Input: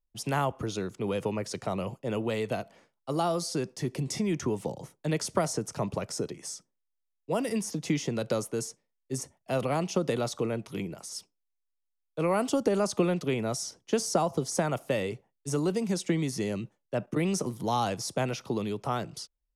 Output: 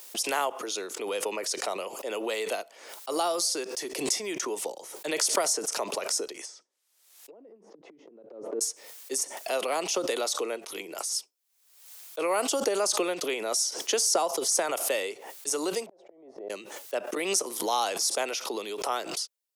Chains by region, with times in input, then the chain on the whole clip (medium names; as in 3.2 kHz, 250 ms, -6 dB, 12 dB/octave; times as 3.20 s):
6.39–8.61 s: low-pass that closes with the level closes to 350 Hz, closed at -29 dBFS + compression 12:1, threshold -43 dBFS
15.86–16.50 s: resonant low-pass 650 Hz, resonance Q 5.4 + inverted gate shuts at -26 dBFS, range -39 dB
whole clip: high-pass 370 Hz 24 dB/octave; treble shelf 3.1 kHz +10.5 dB; swell ahead of each attack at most 64 dB/s